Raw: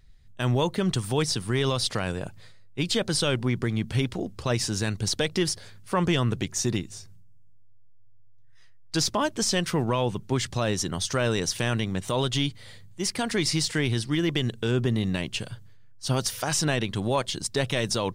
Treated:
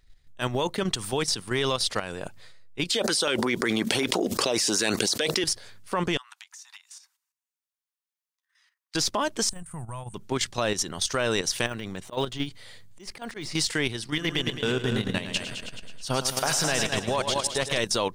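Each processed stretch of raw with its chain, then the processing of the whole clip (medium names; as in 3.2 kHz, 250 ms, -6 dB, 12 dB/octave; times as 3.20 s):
2.90–5.44 s: high-pass 300 Hz + LFO notch saw up 5.3 Hz 560–3900 Hz + level flattener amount 100%
6.17–8.95 s: steep high-pass 820 Hz 72 dB/octave + compression, threshold -46 dBFS
9.49–10.14 s: de-esser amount 90% + FFT filter 110 Hz 0 dB, 170 Hz -6 dB, 260 Hz -20 dB, 450 Hz -24 dB, 730 Hz -13 dB, 1.4 kHz -15 dB, 3.6 kHz -24 dB, 5.5 kHz -24 dB, 8.8 kHz +9 dB, 14 kHz -11 dB
11.66–13.55 s: de-esser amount 100% + slow attack 106 ms
14.07–17.78 s: peaking EQ 330 Hz -7.5 dB 0.22 oct + multi-head delay 107 ms, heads first and second, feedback 41%, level -7.5 dB
whole clip: peaking EQ 99 Hz -10.5 dB 2.6 oct; level held to a coarse grid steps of 10 dB; trim +5 dB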